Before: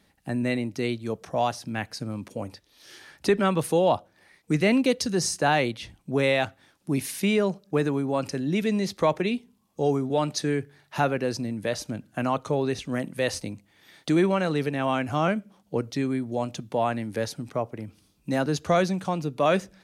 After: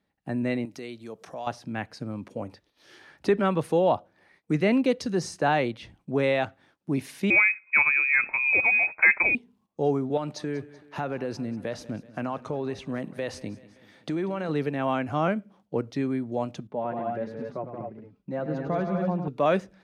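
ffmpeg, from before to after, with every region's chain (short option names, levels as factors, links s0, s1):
-filter_complex "[0:a]asettb=1/sr,asplit=3[s0][s1][s2];[s0]atrim=end=0.654[s3];[s1]atrim=start=0.65:end=1.47,asetpts=PTS-STARTPTS,afade=t=in:d=0.004:c=qsin,afade=t=out:st=0.816:d=0.004:c=qsin,highpass=f=200:p=1,acompressor=threshold=0.01:ratio=2:attack=3.2:release=140:knee=1:detection=peak,highshelf=f=4200:g=11.5[s4];[s2]atrim=start=1.466[s5];[s3][s4]acrossfade=d=0.004:c1=hsin:c2=qsin[s6];[s6][s5]acrossfade=d=0.004:c1=qsin:c2=hsin,asettb=1/sr,asplit=3[s7][s8][s9];[s7]atrim=end=7.304[s10];[s8]atrim=start=7.3:end=9.35,asetpts=PTS-STARTPTS,afade=t=in:d=0.004:c=qsin,afade=t=out:st=2.046:d=0.004:c=qsin,highpass=110,acontrast=86,lowpass=f=2300:t=q:w=0.5098,lowpass=f=2300:t=q:w=0.6013,lowpass=f=2300:t=q:w=0.9,lowpass=f=2300:t=q:w=2.563,afreqshift=-2700[s11];[s9]atrim=start=9.346[s12];[s10][s11]acrossfade=d=0.004:c1=hsin:c2=qsin[s13];[s13][s12]acrossfade=d=0.004:c1=qsin:c2=hsin,asettb=1/sr,asplit=3[s14][s15][s16];[s14]atrim=end=10.174[s17];[s15]atrim=start=10.17:end=14.49,asetpts=PTS-STARTPTS,afade=t=in:d=0.004:c=qsin,afade=t=out:st=4.316:d=0.004:c=qsin,acompressor=threshold=0.0562:ratio=4:attack=3.2:release=140:knee=1:detection=peak,aecho=1:1:190|380|570|760|950:0.112|0.064|0.0365|0.0208|0.0118,atrim=end_sample=190512[s18];[s16]atrim=start=14.486[s19];[s17][s18]acrossfade=d=0.004:c1=hsin:c2=qsin[s20];[s20][s19]acrossfade=d=0.004:c1=qsin:c2=hsin,asettb=1/sr,asplit=3[s21][s22][s23];[s21]atrim=end=16.674[s24];[s22]atrim=start=16.67:end=19.28,asetpts=PTS-STARTPTS,afade=t=in:d=0.004:c=qsin,afade=t=out:st=2.606:d=0.004:c=qsin,lowpass=f=1100:p=1,aecho=1:1:103|176|244|251:0.355|0.473|0.447|0.376,atrim=end_sample=115101,flanger=delay=4.6:depth=1.2:regen=36:speed=1.4:shape=sinusoidal[s25];[s23]atrim=start=19.276[s26];[s24][s25]acrossfade=d=0.004:c1=hsin:c2=qsin[s27];[s27][s26]acrossfade=d=0.004:c1=qsin:c2=hsin,agate=range=0.282:threshold=0.00126:ratio=16:detection=peak,lowpass=f=1900:p=1,lowshelf=f=92:g=-7"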